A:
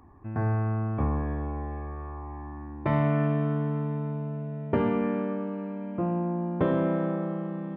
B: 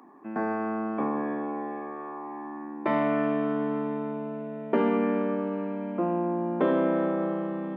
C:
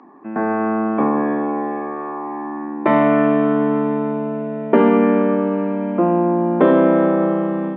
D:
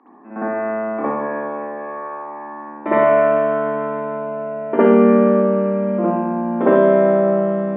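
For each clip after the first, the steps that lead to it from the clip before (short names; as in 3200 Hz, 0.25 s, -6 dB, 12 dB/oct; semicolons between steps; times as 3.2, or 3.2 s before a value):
steep high-pass 210 Hz 36 dB/oct; in parallel at -2.5 dB: limiter -26 dBFS, peak gain reduction 11.5 dB
AGC gain up to 4 dB; air absorption 190 m; gain +7.5 dB
BPF 200–3000 Hz; reverb, pre-delay 56 ms, DRR -8.5 dB; gain -9 dB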